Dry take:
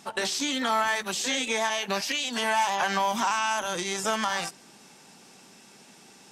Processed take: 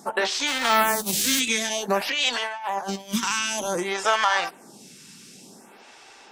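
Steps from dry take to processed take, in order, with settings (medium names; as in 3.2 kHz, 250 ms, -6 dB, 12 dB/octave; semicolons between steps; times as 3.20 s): 0.46–1.39 s: formants flattened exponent 0.3; 2.01–3.23 s: compressor with a negative ratio -31 dBFS, ratio -0.5; lamp-driven phase shifter 0.54 Hz; trim +8 dB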